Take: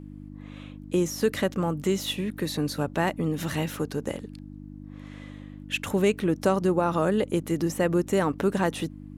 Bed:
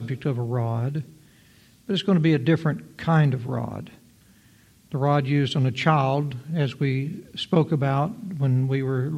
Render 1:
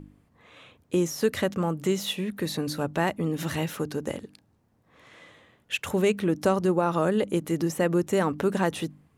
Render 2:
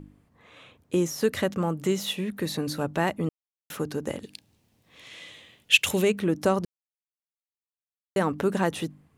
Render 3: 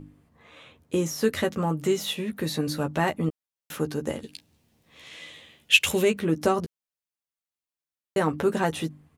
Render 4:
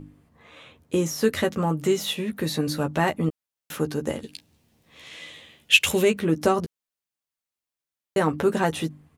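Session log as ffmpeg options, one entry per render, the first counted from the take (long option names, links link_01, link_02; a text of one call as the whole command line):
ffmpeg -i in.wav -af "bandreject=frequency=50:width_type=h:width=4,bandreject=frequency=100:width_type=h:width=4,bandreject=frequency=150:width_type=h:width=4,bandreject=frequency=200:width_type=h:width=4,bandreject=frequency=250:width_type=h:width=4,bandreject=frequency=300:width_type=h:width=4" out.wav
ffmpeg -i in.wav -filter_complex "[0:a]asplit=3[link_01][link_02][link_03];[link_01]afade=type=out:start_time=4.22:duration=0.02[link_04];[link_02]highshelf=frequency=2000:width_type=q:width=1.5:gain=10,afade=type=in:start_time=4.22:duration=0.02,afade=type=out:start_time=6.02:duration=0.02[link_05];[link_03]afade=type=in:start_time=6.02:duration=0.02[link_06];[link_04][link_05][link_06]amix=inputs=3:normalize=0,asplit=5[link_07][link_08][link_09][link_10][link_11];[link_07]atrim=end=3.29,asetpts=PTS-STARTPTS,afade=type=out:start_time=3.286:duration=0.004:curve=hsin[link_12];[link_08]atrim=start=3.29:end=3.7,asetpts=PTS-STARTPTS,volume=0[link_13];[link_09]atrim=start=3.7:end=6.65,asetpts=PTS-STARTPTS,afade=type=in:duration=0.004:curve=hsin,afade=type=out:start_time=2.946:duration=0.004:curve=hsin[link_14];[link_10]atrim=start=6.65:end=8.16,asetpts=PTS-STARTPTS,volume=0[link_15];[link_11]atrim=start=8.16,asetpts=PTS-STARTPTS,afade=type=in:duration=0.004:curve=hsin[link_16];[link_12][link_13][link_14][link_15][link_16]concat=n=5:v=0:a=1" out.wav
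ffmpeg -i in.wav -filter_complex "[0:a]asplit=2[link_01][link_02];[link_02]adelay=13,volume=-6dB[link_03];[link_01][link_03]amix=inputs=2:normalize=0" out.wav
ffmpeg -i in.wav -af "volume=2dB,alimiter=limit=-2dB:level=0:latency=1" out.wav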